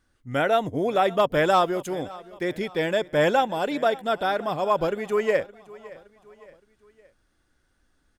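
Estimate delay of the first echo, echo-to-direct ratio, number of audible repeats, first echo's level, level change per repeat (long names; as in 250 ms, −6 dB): 567 ms, −19.5 dB, 3, −20.5 dB, −6.5 dB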